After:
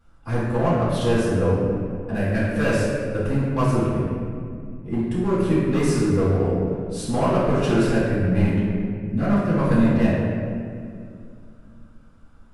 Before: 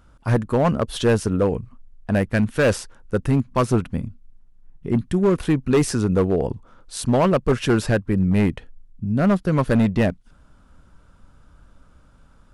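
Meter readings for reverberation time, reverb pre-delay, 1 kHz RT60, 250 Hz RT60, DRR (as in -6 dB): 2.3 s, 3 ms, 2.0 s, 3.2 s, -10.5 dB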